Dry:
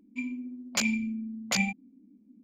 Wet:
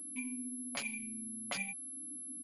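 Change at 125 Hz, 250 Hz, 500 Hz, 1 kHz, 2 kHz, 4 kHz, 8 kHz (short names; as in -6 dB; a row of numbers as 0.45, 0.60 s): -17.5, -12.5, -7.5, -9.5, -9.5, -12.0, -3.5 dB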